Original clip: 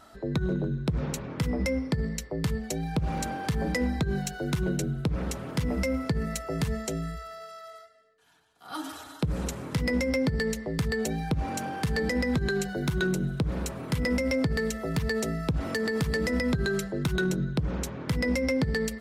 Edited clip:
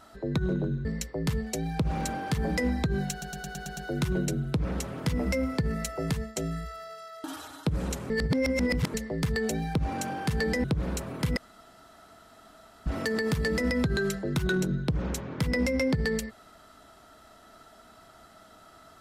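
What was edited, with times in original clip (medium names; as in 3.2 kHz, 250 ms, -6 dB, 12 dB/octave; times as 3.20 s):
0.85–2.02 s: delete
4.28 s: stutter 0.11 s, 7 plays
6.60–6.87 s: fade out, to -12.5 dB
7.75–8.80 s: delete
9.66–10.50 s: reverse
12.20–13.33 s: delete
14.06–15.55 s: room tone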